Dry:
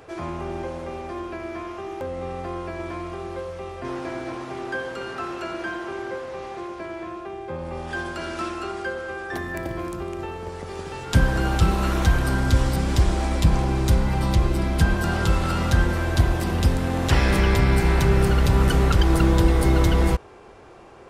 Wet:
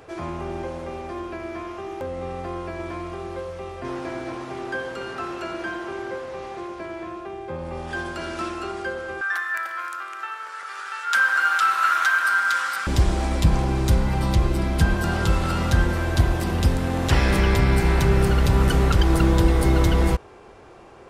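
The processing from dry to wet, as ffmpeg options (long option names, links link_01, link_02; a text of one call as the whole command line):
ffmpeg -i in.wav -filter_complex "[0:a]asettb=1/sr,asplit=3[link_01][link_02][link_03];[link_01]atrim=end=9.214[link_04];[link_02]atrim=start=9.21:end=12.87,asetpts=PTS-STARTPTS,afade=type=in:duration=0.004:curve=qsin,afade=type=out:start_time=3.656:duration=0.004:curve=qsin,highpass=frequency=1400:width_type=q:width=6[link_05];[link_03]atrim=start=12.866[link_06];[link_04][link_05]acrossfade=duration=0.004:curve1=hsin:curve2=qsin[link_07];[link_07][link_06]acrossfade=duration=0.004:curve1=qsin:curve2=hsin" out.wav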